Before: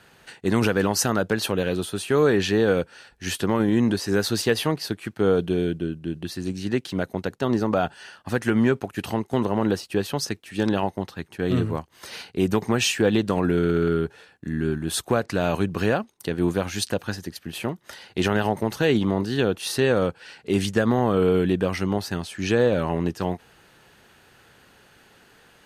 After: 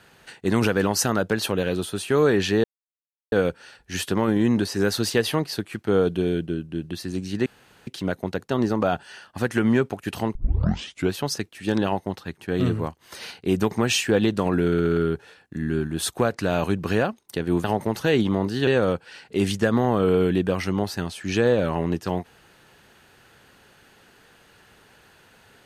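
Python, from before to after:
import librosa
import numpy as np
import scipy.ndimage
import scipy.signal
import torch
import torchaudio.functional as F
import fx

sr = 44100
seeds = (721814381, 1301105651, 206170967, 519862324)

y = fx.edit(x, sr, fx.insert_silence(at_s=2.64, length_s=0.68),
    fx.insert_room_tone(at_s=6.78, length_s=0.41),
    fx.tape_start(start_s=9.26, length_s=0.79),
    fx.cut(start_s=16.55, length_s=1.85),
    fx.cut(start_s=19.43, length_s=0.38), tone=tone)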